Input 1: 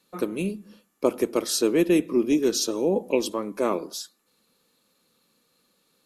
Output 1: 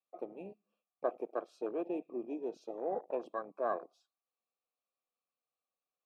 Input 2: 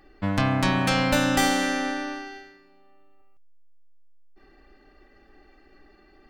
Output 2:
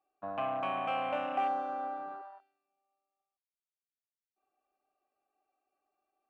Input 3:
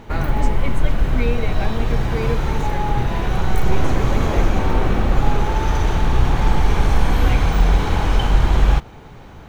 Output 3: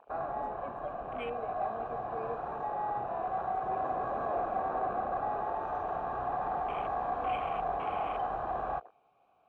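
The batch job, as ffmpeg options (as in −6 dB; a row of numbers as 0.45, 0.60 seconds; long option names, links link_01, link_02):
-filter_complex "[0:a]asplit=3[link_01][link_02][link_03];[link_01]bandpass=frequency=730:width_type=q:width=8,volume=0dB[link_04];[link_02]bandpass=frequency=1090:width_type=q:width=8,volume=-6dB[link_05];[link_03]bandpass=frequency=2440:width_type=q:width=8,volume=-9dB[link_06];[link_04][link_05][link_06]amix=inputs=3:normalize=0,aeval=exprs='0.1*(cos(1*acos(clip(val(0)/0.1,-1,1)))-cos(1*PI/2))+0.00126*(cos(4*acos(clip(val(0)/0.1,-1,1)))-cos(4*PI/2))+0.00501*(cos(5*acos(clip(val(0)/0.1,-1,1)))-cos(5*PI/2))+0.000562*(cos(6*acos(clip(val(0)/0.1,-1,1)))-cos(6*PI/2))':channel_layout=same,afwtdn=0.01"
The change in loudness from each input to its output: −15.0, −11.0, −14.5 LU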